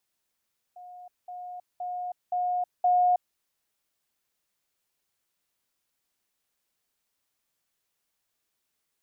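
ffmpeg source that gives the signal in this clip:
ffmpeg -f lavfi -i "aevalsrc='pow(10,(-42.5+6*floor(t/0.52))/20)*sin(2*PI*720*t)*clip(min(mod(t,0.52),0.32-mod(t,0.52))/0.005,0,1)':duration=2.6:sample_rate=44100" out.wav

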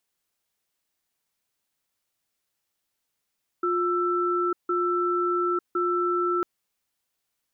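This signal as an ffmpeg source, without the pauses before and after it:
ffmpeg -f lavfi -i "aevalsrc='0.0596*(sin(2*PI*354*t)+sin(2*PI*1330*t))*clip(min(mod(t,1.06),0.9-mod(t,1.06))/0.005,0,1)':duration=2.8:sample_rate=44100" out.wav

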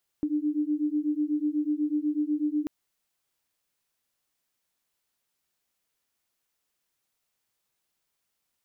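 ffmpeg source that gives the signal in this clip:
ffmpeg -f lavfi -i "aevalsrc='0.0422*(sin(2*PI*295*t)+sin(2*PI*303.1*t))':duration=2.44:sample_rate=44100" out.wav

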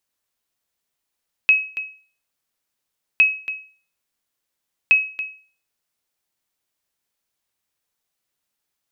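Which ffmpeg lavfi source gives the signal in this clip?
ffmpeg -f lavfi -i "aevalsrc='0.473*(sin(2*PI*2560*mod(t,1.71))*exp(-6.91*mod(t,1.71)/0.41)+0.211*sin(2*PI*2560*max(mod(t,1.71)-0.28,0))*exp(-6.91*max(mod(t,1.71)-0.28,0)/0.41))':duration=5.13:sample_rate=44100" out.wav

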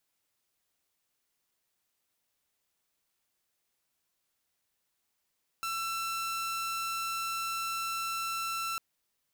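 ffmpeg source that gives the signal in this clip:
ffmpeg -f lavfi -i "aevalsrc='0.0335*(2*mod(1340*t,1)-1)':duration=3.15:sample_rate=44100" out.wav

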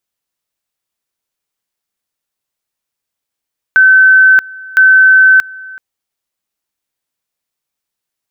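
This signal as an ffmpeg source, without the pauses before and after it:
ffmpeg -f lavfi -i "aevalsrc='pow(10,(-2.5-23.5*gte(mod(t,1.01),0.63))/20)*sin(2*PI*1530*t)':duration=2.02:sample_rate=44100" out.wav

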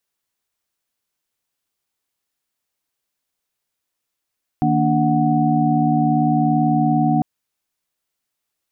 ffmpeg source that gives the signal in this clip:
ffmpeg -f lavfi -i "aevalsrc='0.106*(sin(2*PI*155.56*t)+sin(2*PI*233.08*t)+sin(2*PI*293.66*t)+sin(2*PI*739.99*t))':duration=2.6:sample_rate=44100" out.wav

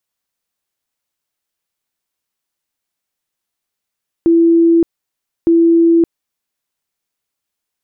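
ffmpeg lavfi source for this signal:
ffmpeg -f lavfi -i "aevalsrc='0.473*sin(2*PI*334*mod(t,1.21))*lt(mod(t,1.21),190/334)':duration=2.42:sample_rate=44100" out.wav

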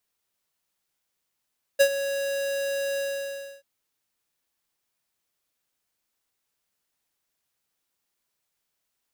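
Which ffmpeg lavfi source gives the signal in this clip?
ffmpeg -f lavfi -i "aevalsrc='0.178*(2*lt(mod(555*t,1),0.5)-1)':duration=1.834:sample_rate=44100,afade=type=in:duration=0.019,afade=type=out:start_time=0.019:duration=0.073:silence=0.224,afade=type=out:start_time=1.19:duration=0.644" out.wav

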